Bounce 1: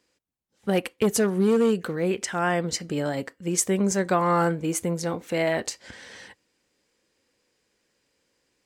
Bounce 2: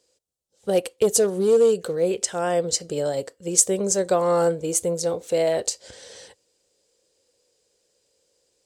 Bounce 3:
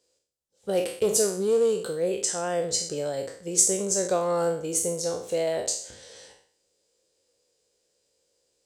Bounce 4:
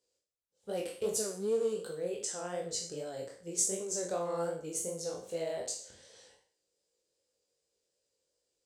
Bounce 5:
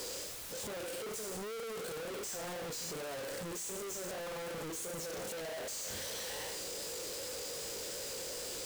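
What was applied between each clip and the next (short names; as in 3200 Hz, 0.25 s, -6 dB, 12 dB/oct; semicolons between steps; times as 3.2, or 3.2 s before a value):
ten-band EQ 250 Hz -9 dB, 500 Hz +11 dB, 1000 Hz -4 dB, 2000 Hz -8 dB, 4000 Hz +4 dB, 8000 Hz +9 dB; gain -1 dB
spectral trails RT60 0.53 s; gain -5.5 dB
chorus 2.6 Hz, delay 17.5 ms, depth 6 ms; gain -7 dB
infinite clipping; gain -3 dB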